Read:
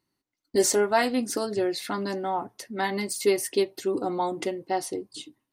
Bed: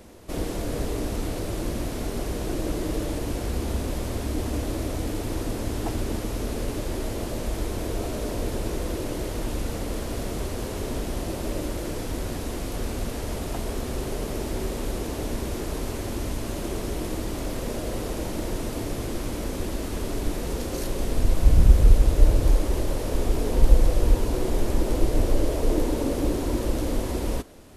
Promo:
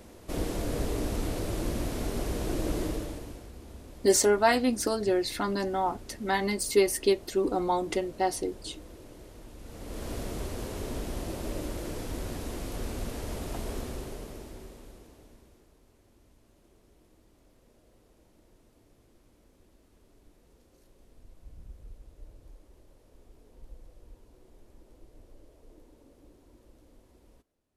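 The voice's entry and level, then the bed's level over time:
3.50 s, 0.0 dB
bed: 0:02.83 −2.5 dB
0:03.52 −19 dB
0:09.57 −19 dB
0:10.07 −5.5 dB
0:13.78 −5.5 dB
0:15.77 −32.5 dB

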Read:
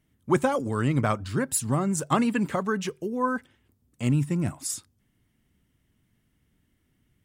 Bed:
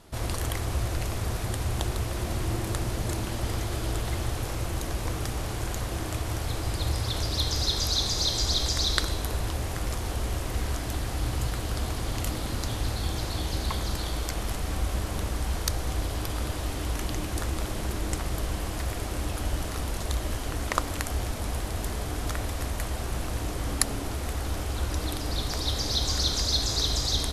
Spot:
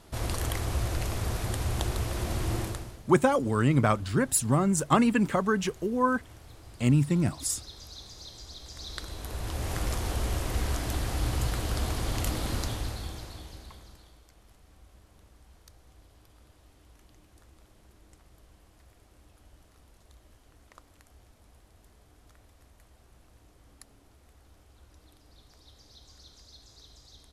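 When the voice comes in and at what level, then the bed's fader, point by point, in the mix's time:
2.80 s, +1.0 dB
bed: 0:02.62 −1 dB
0:03.03 −19.5 dB
0:08.61 −19.5 dB
0:09.73 0 dB
0:12.57 0 dB
0:14.24 −27.5 dB

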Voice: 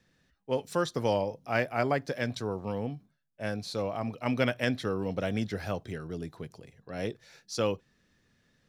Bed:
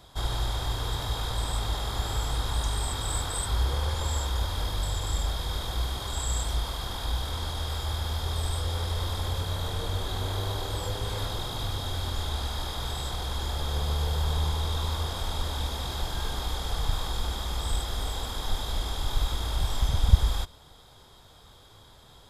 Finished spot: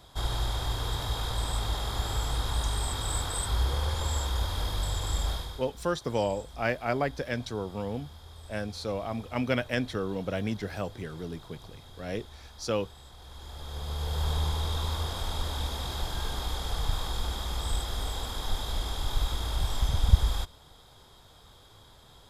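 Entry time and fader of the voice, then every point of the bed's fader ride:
5.10 s, −0.5 dB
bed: 0:05.34 −1 dB
0:05.71 −18 dB
0:13.13 −18 dB
0:14.25 −1.5 dB

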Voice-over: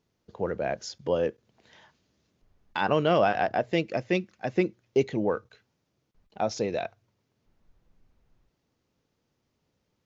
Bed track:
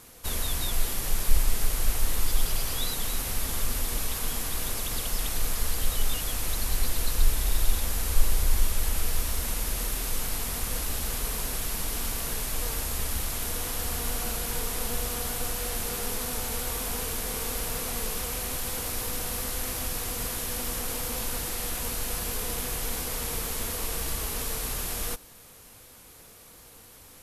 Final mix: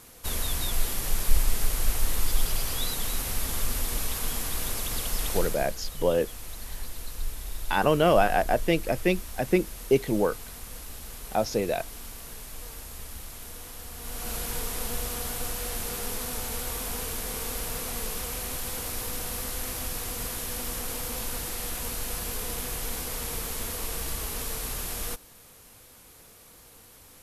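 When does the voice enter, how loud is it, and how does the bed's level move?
4.95 s, +2.0 dB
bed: 0:05.37 0 dB
0:05.76 −10.5 dB
0:13.94 −10.5 dB
0:14.35 −1.5 dB

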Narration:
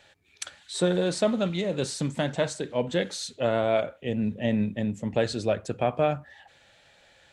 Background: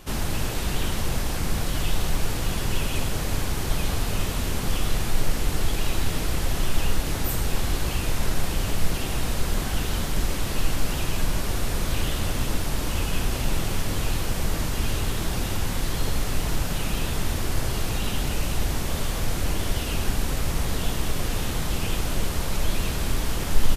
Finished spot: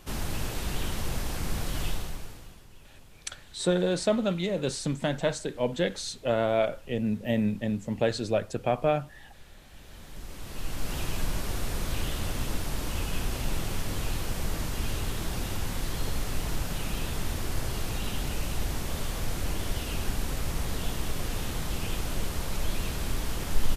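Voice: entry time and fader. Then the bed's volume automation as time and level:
2.85 s, −1.0 dB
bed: 0:01.87 −5.5 dB
0:02.68 −27.5 dB
0:09.59 −27.5 dB
0:10.97 −5.5 dB

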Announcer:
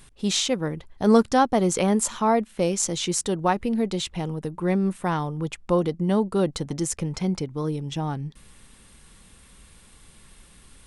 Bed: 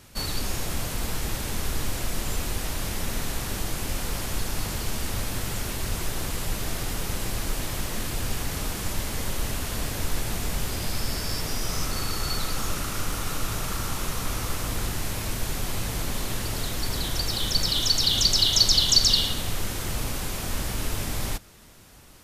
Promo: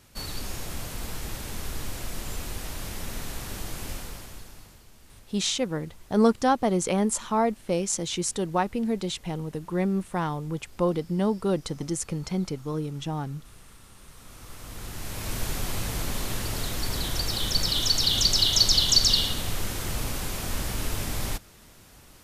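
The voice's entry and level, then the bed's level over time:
5.10 s, −3.0 dB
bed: 0:03.91 −5.5 dB
0:04.88 −24.5 dB
0:13.94 −24.5 dB
0:15.37 −1 dB

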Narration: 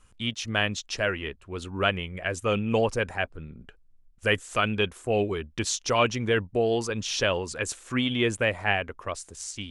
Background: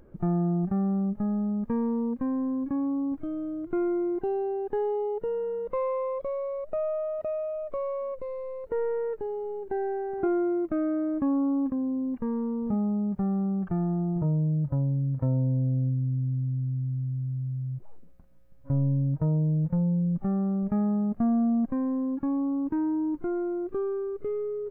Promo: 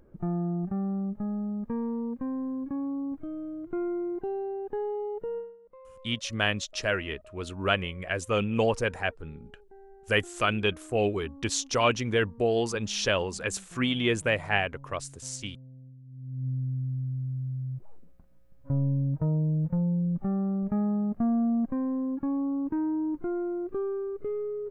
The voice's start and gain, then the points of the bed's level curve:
5.85 s, −1.0 dB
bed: 0:05.38 −4 dB
0:05.58 −22.5 dB
0:16.04 −22.5 dB
0:16.47 −1.5 dB

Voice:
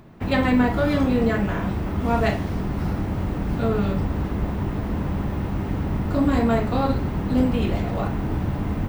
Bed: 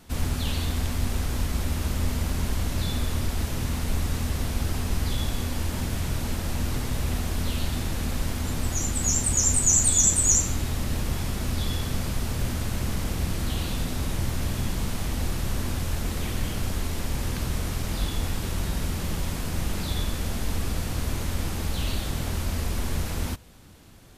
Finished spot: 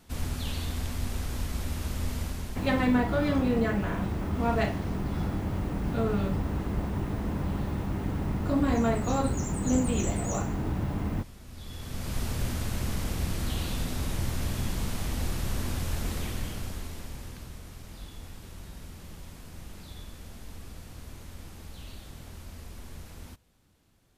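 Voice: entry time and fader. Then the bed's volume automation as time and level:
2.35 s, −5.5 dB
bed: 0:02.22 −5.5 dB
0:03.06 −19.5 dB
0:11.45 −19.5 dB
0:12.18 −3 dB
0:16.13 −3 dB
0:17.60 −16 dB

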